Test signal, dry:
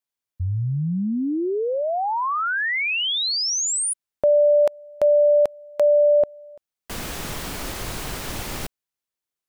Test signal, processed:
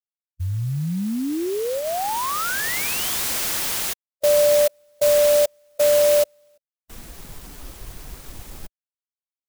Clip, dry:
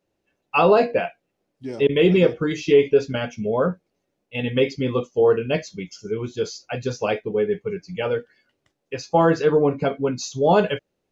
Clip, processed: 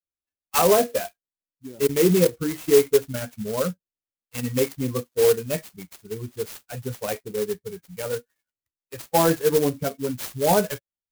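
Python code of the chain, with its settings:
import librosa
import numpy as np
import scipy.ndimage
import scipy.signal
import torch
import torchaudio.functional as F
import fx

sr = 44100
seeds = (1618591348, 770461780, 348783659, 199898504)

y = fx.bin_expand(x, sr, power=1.5)
y = fx.clock_jitter(y, sr, seeds[0], jitter_ms=0.084)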